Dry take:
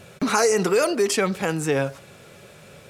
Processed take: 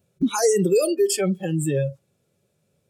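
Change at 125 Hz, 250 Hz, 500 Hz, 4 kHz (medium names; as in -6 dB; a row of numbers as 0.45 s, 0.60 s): +4.5 dB, +2.0 dB, +0.5 dB, -3.5 dB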